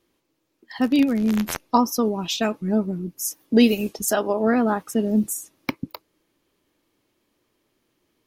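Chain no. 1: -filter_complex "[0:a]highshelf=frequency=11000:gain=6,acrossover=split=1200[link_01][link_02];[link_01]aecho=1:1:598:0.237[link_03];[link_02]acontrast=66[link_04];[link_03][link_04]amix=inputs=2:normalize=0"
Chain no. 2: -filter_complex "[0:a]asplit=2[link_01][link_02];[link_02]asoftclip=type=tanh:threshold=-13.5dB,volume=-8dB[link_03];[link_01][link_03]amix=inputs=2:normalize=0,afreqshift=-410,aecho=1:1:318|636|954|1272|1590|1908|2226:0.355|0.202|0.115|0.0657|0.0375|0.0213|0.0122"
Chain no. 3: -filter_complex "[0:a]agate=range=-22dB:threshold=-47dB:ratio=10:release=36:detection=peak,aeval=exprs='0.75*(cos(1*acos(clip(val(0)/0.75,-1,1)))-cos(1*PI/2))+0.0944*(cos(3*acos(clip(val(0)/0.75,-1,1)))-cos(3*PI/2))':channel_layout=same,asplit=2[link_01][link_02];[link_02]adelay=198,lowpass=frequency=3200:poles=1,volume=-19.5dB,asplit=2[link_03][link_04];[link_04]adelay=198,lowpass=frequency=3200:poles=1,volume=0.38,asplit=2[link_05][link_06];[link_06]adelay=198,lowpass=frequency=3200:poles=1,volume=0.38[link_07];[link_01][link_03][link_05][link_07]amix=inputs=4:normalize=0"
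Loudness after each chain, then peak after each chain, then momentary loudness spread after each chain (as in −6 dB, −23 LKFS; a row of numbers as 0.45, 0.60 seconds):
−20.0, −20.0, −26.0 LKFS; −1.5, −2.5, −2.0 dBFS; 10, 14, 11 LU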